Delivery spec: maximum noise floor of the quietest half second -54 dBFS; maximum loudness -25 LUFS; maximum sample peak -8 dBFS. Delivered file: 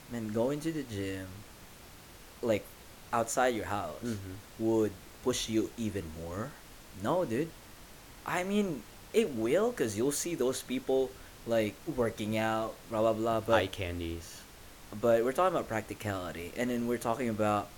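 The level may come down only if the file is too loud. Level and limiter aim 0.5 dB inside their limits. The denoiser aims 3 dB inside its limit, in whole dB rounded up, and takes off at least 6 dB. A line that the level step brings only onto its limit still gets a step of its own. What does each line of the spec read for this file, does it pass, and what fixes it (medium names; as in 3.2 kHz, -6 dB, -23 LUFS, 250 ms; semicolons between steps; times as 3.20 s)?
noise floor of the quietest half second -52 dBFS: fail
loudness -32.5 LUFS: pass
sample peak -11.5 dBFS: pass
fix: noise reduction 6 dB, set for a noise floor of -52 dBFS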